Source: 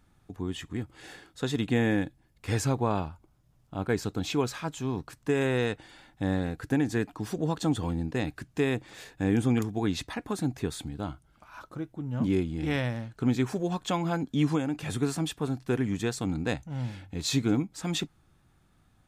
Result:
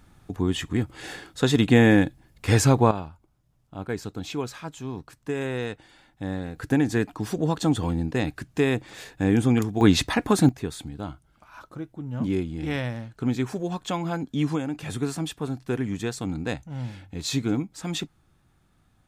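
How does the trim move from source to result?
+9 dB
from 2.91 s -2.5 dB
from 6.56 s +4.5 dB
from 9.81 s +11.5 dB
from 10.49 s +0.5 dB

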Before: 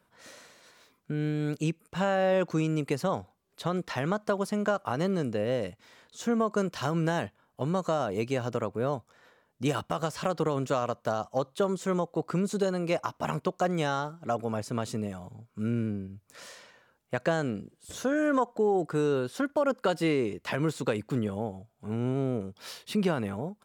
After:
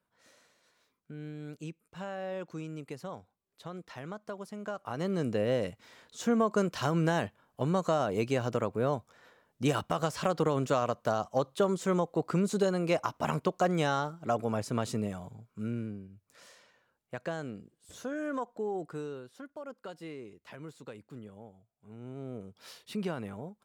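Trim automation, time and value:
4.59 s -12.5 dB
5.30 s 0 dB
15.17 s 0 dB
16.04 s -9 dB
18.87 s -9 dB
19.27 s -17 dB
21.94 s -17 dB
22.54 s -7.5 dB

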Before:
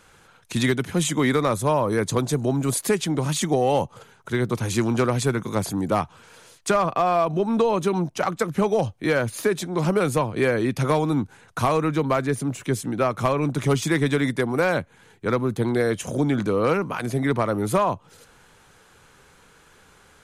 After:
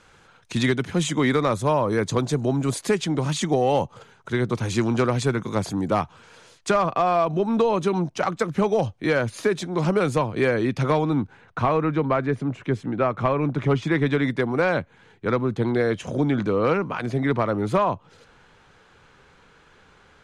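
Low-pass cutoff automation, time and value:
10.49 s 6.6 kHz
11.63 s 2.6 kHz
13.77 s 2.6 kHz
14.43 s 4.4 kHz

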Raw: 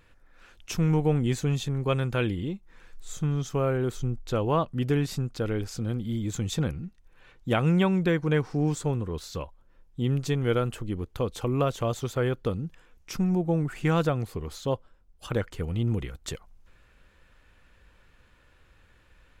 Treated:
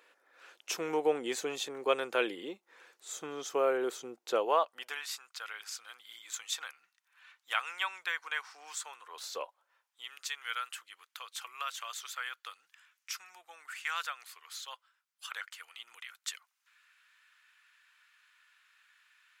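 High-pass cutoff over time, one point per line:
high-pass 24 dB/octave
4.35 s 390 Hz
5.05 s 1.1 kHz
9.02 s 1.1 kHz
9.34 s 470 Hz
10.11 s 1.3 kHz

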